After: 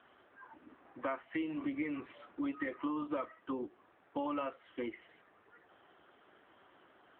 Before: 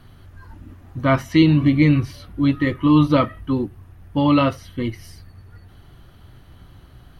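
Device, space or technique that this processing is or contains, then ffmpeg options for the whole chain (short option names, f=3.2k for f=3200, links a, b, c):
voicemail: -filter_complex "[0:a]highpass=370,lowpass=2.8k,acrossover=split=220 4500:gain=0.126 1 0.0891[a][b][c];[a][b][c]amix=inputs=3:normalize=0,acompressor=threshold=-30dB:ratio=6,volume=-4dB" -ar 8000 -c:a libopencore_amrnb -b:a 7950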